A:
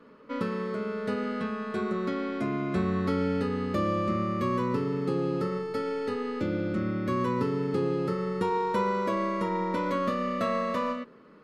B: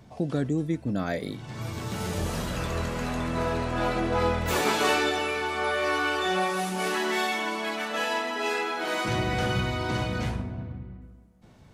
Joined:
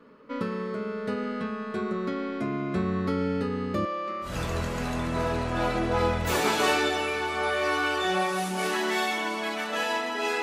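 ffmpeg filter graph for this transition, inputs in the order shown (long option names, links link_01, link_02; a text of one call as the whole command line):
ffmpeg -i cue0.wav -i cue1.wav -filter_complex "[0:a]asettb=1/sr,asplit=3[link_01][link_02][link_03];[link_01]atrim=end=3.854[link_04];[link_02]atrim=start=3.85:end=4.37,asetpts=PTS-STARTPTS,afade=type=in:duration=0.004:curve=qsin,afade=type=out:start_time=0.516:duration=0.004:curve=qsin,highpass=570,lowpass=5400[link_05];[link_03]atrim=start=4.366[link_06];[link_04][link_05]acrossfade=duration=0.004:curve1=hsin:curve2=qsin[link_07];[link_07][link_06]acrossfade=duration=0.004:curve1=qsin:curve2=hsin,apad=whole_dur=10.42,atrim=end=10.42,atrim=end=4.37,asetpts=PTS-STARTPTS[link_08];[1:a]atrim=start=2.42:end=8.63,asetpts=PTS-STARTPTS[link_09];[link_08][link_09]acrossfade=duration=0.16:curve1=tri:curve2=tri" out.wav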